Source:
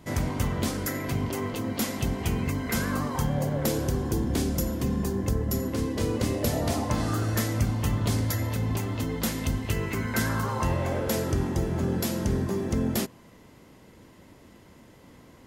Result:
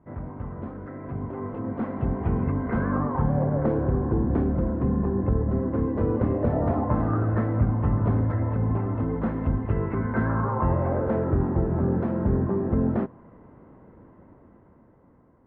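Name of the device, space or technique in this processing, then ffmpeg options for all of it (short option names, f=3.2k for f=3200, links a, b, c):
action camera in a waterproof case: -af "lowpass=f=1.4k:w=0.5412,lowpass=f=1.4k:w=1.3066,dynaudnorm=f=460:g=7:m=11.5dB,volume=-7.5dB" -ar 22050 -c:a aac -b:a 64k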